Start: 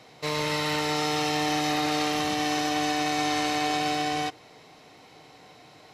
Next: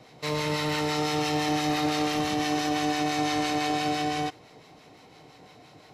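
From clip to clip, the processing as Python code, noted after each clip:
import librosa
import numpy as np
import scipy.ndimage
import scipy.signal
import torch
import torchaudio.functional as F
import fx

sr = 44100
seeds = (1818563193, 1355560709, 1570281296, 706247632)

y = fx.low_shelf(x, sr, hz=450.0, db=5.5)
y = fx.harmonic_tremolo(y, sr, hz=5.9, depth_pct=50, crossover_hz=920.0)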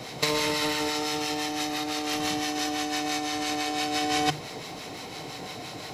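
y = fx.high_shelf(x, sr, hz=3500.0, db=8.0)
y = fx.hum_notches(y, sr, base_hz=50, count=3)
y = fx.over_compress(y, sr, threshold_db=-31.0, ratio=-0.5)
y = y * 10.0 ** (5.0 / 20.0)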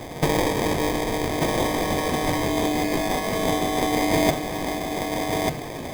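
y = fx.sample_hold(x, sr, seeds[0], rate_hz=1400.0, jitter_pct=0)
y = y + 10.0 ** (-3.5 / 20.0) * np.pad(y, (int(1191 * sr / 1000.0), 0))[:len(y)]
y = y * 10.0 ** (4.5 / 20.0)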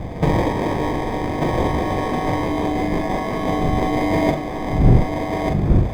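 y = fx.dmg_wind(x, sr, seeds[1], corner_hz=150.0, level_db=-26.0)
y = fx.lowpass(y, sr, hz=1300.0, slope=6)
y = fx.doubler(y, sr, ms=41.0, db=-5.0)
y = y * 10.0 ** (2.5 / 20.0)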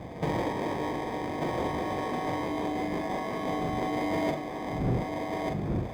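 y = fx.highpass(x, sr, hz=190.0, slope=6)
y = 10.0 ** (-11.5 / 20.0) * np.tanh(y / 10.0 ** (-11.5 / 20.0))
y = y * 10.0 ** (-8.0 / 20.0)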